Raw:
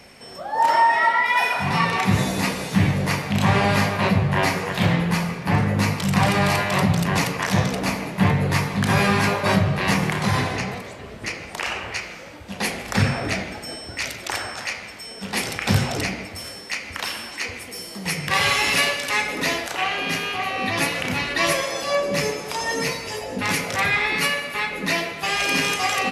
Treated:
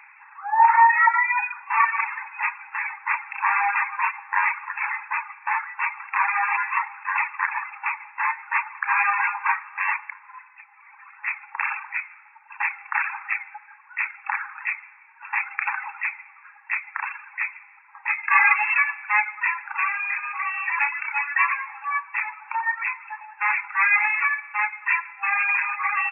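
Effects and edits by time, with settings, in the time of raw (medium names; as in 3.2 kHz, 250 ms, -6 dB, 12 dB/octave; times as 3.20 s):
1.08–1.70 s: fade out, to -12.5 dB
9.81–11.15 s: dip -14 dB, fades 0.44 s
18.09–18.54 s: comb 2.4 ms, depth 72%
whole clip: reverb removal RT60 1.9 s; FFT band-pass 790–2700 Hz; trim +4 dB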